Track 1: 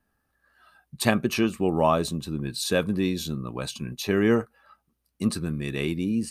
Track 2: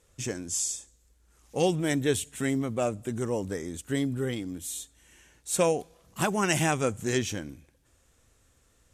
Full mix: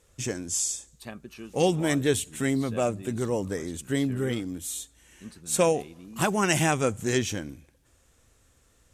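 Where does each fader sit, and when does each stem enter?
-19.0, +2.0 dB; 0.00, 0.00 s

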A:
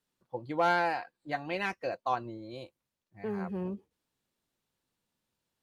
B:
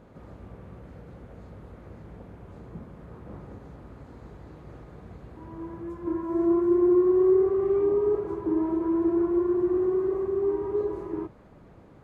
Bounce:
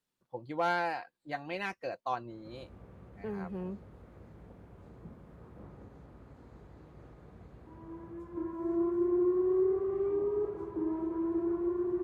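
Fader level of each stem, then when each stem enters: -3.5, -8.0 dB; 0.00, 2.30 s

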